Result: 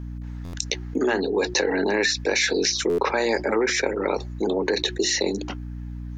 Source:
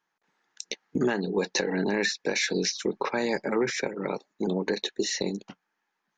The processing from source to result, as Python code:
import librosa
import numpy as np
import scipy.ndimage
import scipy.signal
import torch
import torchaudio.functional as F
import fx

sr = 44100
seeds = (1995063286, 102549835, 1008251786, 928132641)

y = scipy.signal.sosfilt(scipy.signal.butter(4, 260.0, 'highpass', fs=sr, output='sos'), x)
y = fx.hum_notches(y, sr, base_hz=60, count=6)
y = fx.add_hum(y, sr, base_hz=60, snr_db=20)
y = fx.buffer_glitch(y, sr, at_s=(0.44, 2.89), block=512, repeats=7)
y = fx.env_flatten(y, sr, amount_pct=50)
y = F.gain(torch.from_numpy(y), 3.5).numpy()